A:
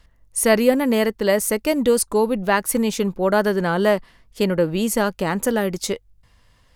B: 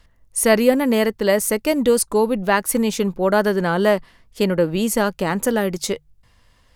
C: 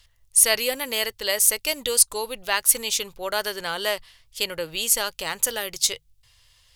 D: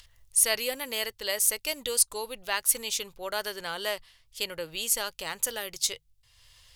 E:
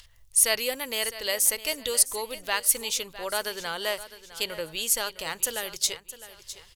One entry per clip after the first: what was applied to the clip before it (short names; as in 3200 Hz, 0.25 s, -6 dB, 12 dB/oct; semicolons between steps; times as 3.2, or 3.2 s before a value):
notches 50/100/150 Hz; gain +1 dB
EQ curve 130 Hz 0 dB, 190 Hz -20 dB, 470 Hz -6 dB, 1700 Hz +1 dB, 3200 Hz +12 dB; gain -6 dB
upward compressor, threshold -41 dBFS; gain -6 dB
feedback echo 0.658 s, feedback 35%, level -15 dB; gain +2 dB